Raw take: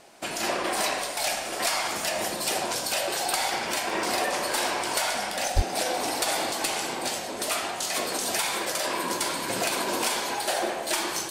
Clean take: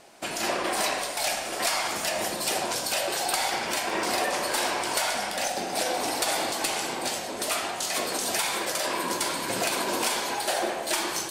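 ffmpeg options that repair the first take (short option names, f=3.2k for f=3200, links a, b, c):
-filter_complex "[0:a]asplit=3[a][b][c];[a]afade=t=out:st=5.55:d=0.02[d];[b]highpass=f=140:w=0.5412,highpass=f=140:w=1.3066,afade=t=in:st=5.55:d=0.02,afade=t=out:st=5.67:d=0.02[e];[c]afade=t=in:st=5.67:d=0.02[f];[d][e][f]amix=inputs=3:normalize=0"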